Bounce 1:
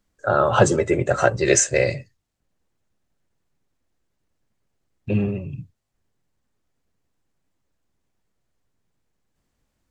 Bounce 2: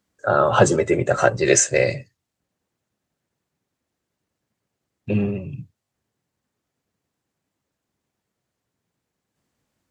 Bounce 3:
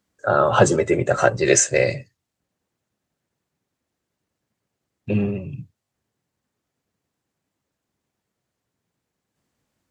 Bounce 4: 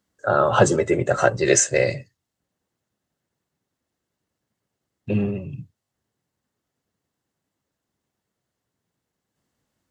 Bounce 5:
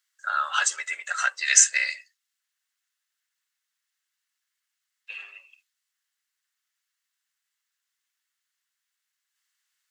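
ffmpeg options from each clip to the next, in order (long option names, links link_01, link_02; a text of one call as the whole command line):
ffmpeg -i in.wav -af "highpass=97,volume=1dB" out.wav
ffmpeg -i in.wav -af anull out.wav
ffmpeg -i in.wav -af "bandreject=frequency=2400:width=13,volume=-1dB" out.wav
ffmpeg -i in.wav -af "highpass=frequency=1500:width=0.5412,highpass=frequency=1500:width=1.3066,volume=3dB" out.wav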